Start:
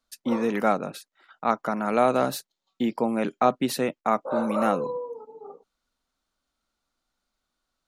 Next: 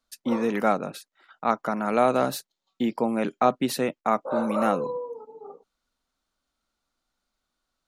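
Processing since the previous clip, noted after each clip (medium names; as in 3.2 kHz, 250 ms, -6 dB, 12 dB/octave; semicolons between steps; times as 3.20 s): no audible change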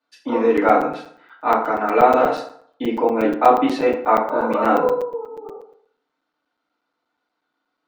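band-pass 280–2800 Hz; FDN reverb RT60 0.61 s, low-frequency decay 0.9×, high-frequency decay 0.65×, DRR -8.5 dB; crackling interface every 0.12 s, samples 256, zero, from 0.57 s; trim -1 dB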